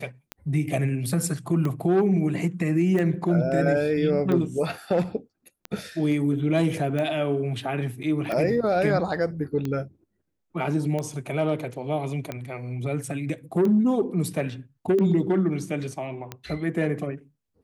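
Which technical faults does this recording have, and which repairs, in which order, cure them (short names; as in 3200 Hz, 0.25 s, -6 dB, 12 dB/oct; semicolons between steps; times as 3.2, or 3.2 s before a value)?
tick 45 rpm -17 dBFS
8.03–8.04 gap 7.9 ms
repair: de-click; interpolate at 8.03, 7.9 ms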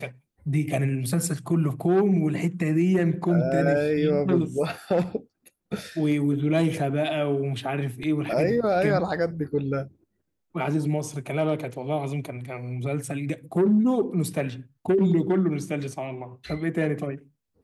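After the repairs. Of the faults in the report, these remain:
none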